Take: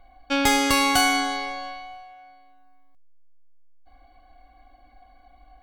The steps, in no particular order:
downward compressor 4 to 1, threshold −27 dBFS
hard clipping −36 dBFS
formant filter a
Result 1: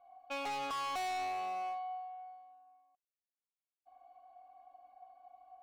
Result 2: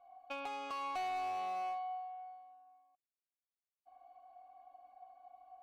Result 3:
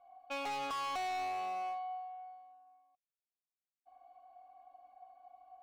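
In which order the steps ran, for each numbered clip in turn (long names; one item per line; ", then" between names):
formant filter, then hard clipping, then downward compressor
downward compressor, then formant filter, then hard clipping
formant filter, then downward compressor, then hard clipping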